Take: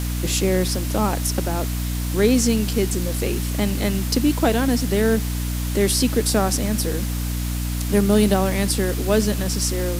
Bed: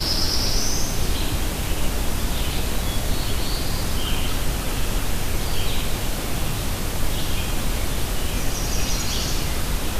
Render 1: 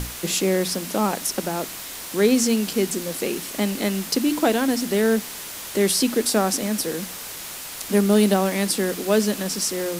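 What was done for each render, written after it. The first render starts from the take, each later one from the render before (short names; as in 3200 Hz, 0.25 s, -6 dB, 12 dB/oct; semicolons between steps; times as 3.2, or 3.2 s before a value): notches 60/120/180/240/300 Hz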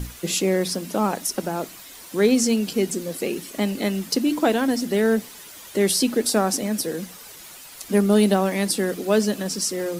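denoiser 10 dB, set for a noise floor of -35 dBFS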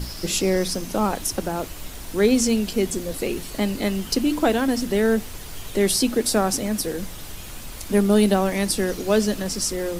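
add bed -14.5 dB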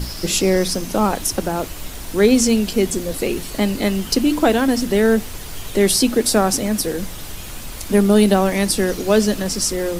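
gain +4.5 dB; limiter -3 dBFS, peak gain reduction 1.5 dB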